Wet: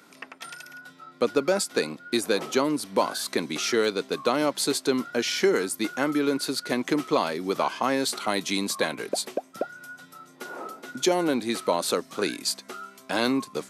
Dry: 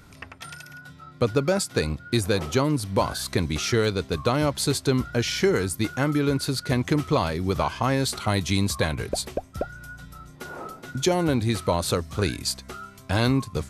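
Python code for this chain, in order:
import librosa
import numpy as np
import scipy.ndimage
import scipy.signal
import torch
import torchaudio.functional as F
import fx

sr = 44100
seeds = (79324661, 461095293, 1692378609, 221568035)

y = scipy.signal.sosfilt(scipy.signal.butter(4, 230.0, 'highpass', fs=sr, output='sos'), x)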